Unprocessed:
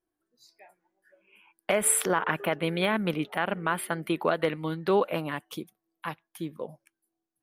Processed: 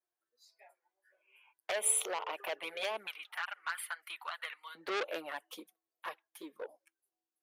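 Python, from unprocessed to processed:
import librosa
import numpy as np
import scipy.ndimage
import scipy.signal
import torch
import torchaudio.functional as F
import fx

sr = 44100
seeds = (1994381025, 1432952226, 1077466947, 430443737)

y = fx.highpass(x, sr, hz=fx.steps((0.0, 490.0), (3.07, 1100.0), (4.75, 370.0)), slope=24)
y = fx.env_flanger(y, sr, rest_ms=8.5, full_db=-24.0)
y = fx.transformer_sat(y, sr, knee_hz=3600.0)
y = y * librosa.db_to_amplitude(-3.0)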